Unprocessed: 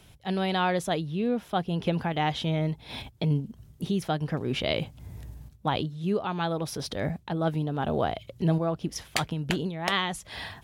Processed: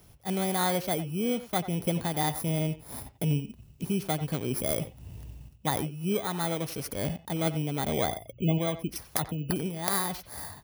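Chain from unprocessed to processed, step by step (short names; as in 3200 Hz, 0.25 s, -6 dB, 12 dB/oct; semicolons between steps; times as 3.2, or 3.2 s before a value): FFT order left unsorted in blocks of 16 samples; 8.06–9.56 spectral gate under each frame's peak -30 dB strong; speakerphone echo 90 ms, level -13 dB; gain -1.5 dB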